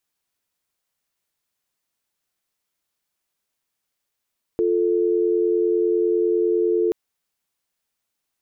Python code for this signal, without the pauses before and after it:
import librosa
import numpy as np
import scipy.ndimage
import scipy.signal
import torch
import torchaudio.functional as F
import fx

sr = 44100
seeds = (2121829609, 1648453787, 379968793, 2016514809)

y = fx.call_progress(sr, length_s=2.33, kind='dial tone', level_db=-19.5)